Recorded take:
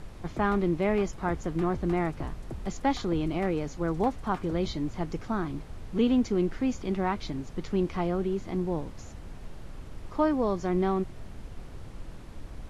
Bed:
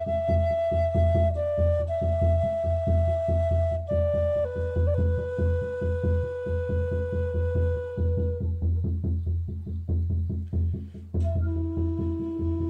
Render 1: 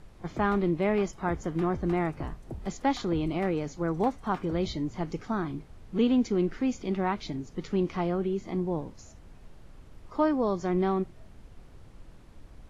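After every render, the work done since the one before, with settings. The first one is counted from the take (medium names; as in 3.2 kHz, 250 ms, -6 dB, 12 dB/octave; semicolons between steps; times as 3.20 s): noise print and reduce 8 dB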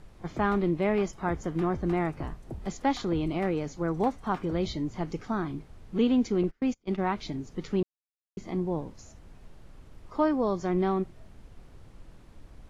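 6.43–7.13 s: gate -33 dBFS, range -31 dB; 7.83–8.37 s: mute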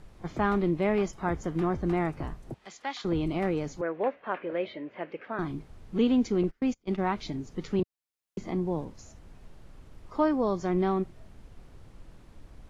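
2.54–3.05 s: band-pass filter 2.7 kHz, Q 0.69; 3.81–5.39 s: cabinet simulation 430–2800 Hz, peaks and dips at 560 Hz +9 dB, 810 Hz -6 dB, 1.2 kHz -4 dB, 1.7 kHz +6 dB, 2.6 kHz +7 dB; 7.79–8.85 s: three bands compressed up and down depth 40%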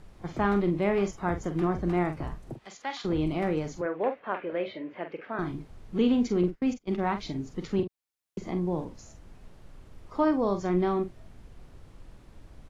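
doubling 45 ms -9 dB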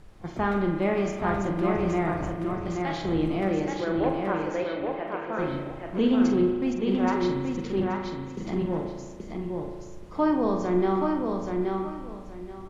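feedback delay 827 ms, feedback 23%, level -4 dB; spring tank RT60 1.5 s, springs 36 ms, chirp 50 ms, DRR 3.5 dB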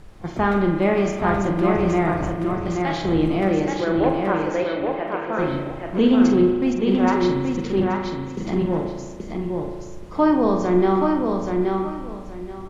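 trim +6 dB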